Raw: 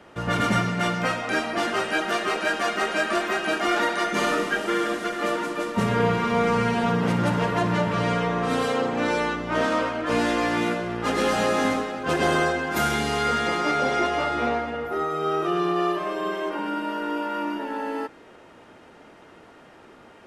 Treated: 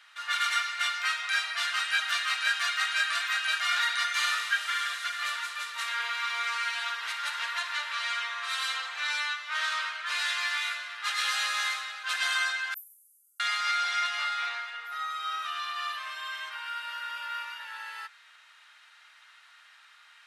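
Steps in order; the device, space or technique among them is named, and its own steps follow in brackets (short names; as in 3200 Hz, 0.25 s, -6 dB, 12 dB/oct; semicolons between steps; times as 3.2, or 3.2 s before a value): headphones lying on a table (HPF 1400 Hz 24 dB/oct; bell 3900 Hz +8 dB 0.3 oct); 12.74–13.4 inverse Chebyshev band-stop 250–4200 Hz, stop band 70 dB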